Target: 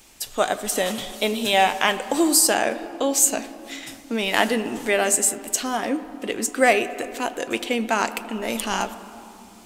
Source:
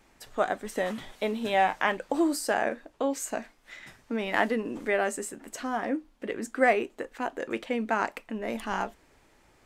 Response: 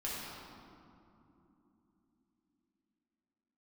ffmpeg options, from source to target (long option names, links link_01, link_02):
-filter_complex "[0:a]asplit=2[link_01][link_02];[link_02]highpass=320,lowpass=3400[link_03];[1:a]atrim=start_sample=2205,lowshelf=frequency=300:gain=9.5,adelay=78[link_04];[link_03][link_04]afir=irnorm=-1:irlink=0,volume=-16.5dB[link_05];[link_01][link_05]amix=inputs=2:normalize=0,aexciter=amount=3.3:drive=5.8:freq=2600,volume=5dB"